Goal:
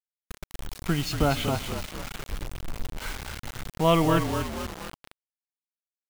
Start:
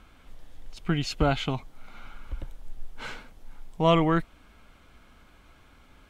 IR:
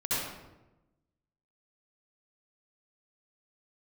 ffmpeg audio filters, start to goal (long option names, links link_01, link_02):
-filter_complex "[0:a]asplit=7[link_01][link_02][link_03][link_04][link_05][link_06][link_07];[link_02]adelay=237,afreqshift=-42,volume=-7dB[link_08];[link_03]adelay=474,afreqshift=-84,volume=-12.8dB[link_09];[link_04]adelay=711,afreqshift=-126,volume=-18.7dB[link_10];[link_05]adelay=948,afreqshift=-168,volume=-24.5dB[link_11];[link_06]adelay=1185,afreqshift=-210,volume=-30.4dB[link_12];[link_07]adelay=1422,afreqshift=-252,volume=-36.2dB[link_13];[link_01][link_08][link_09][link_10][link_11][link_12][link_13]amix=inputs=7:normalize=0,asplit=2[link_14][link_15];[1:a]atrim=start_sample=2205,afade=type=out:start_time=0.25:duration=0.01,atrim=end_sample=11466,adelay=27[link_16];[link_15][link_16]afir=irnorm=-1:irlink=0,volume=-27.5dB[link_17];[link_14][link_17]amix=inputs=2:normalize=0,acrusher=bits=5:mix=0:aa=0.000001"